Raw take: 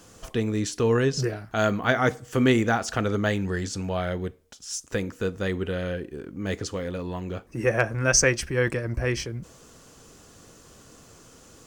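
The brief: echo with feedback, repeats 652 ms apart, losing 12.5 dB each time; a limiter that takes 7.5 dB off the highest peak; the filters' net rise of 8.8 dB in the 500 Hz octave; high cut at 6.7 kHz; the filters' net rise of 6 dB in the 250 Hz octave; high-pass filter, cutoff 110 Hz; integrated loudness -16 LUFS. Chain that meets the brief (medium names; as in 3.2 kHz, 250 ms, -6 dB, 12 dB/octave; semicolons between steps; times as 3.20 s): high-pass 110 Hz; low-pass 6.7 kHz; peaking EQ 250 Hz +5 dB; peaking EQ 500 Hz +9 dB; peak limiter -9 dBFS; feedback delay 652 ms, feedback 24%, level -12.5 dB; trim +6 dB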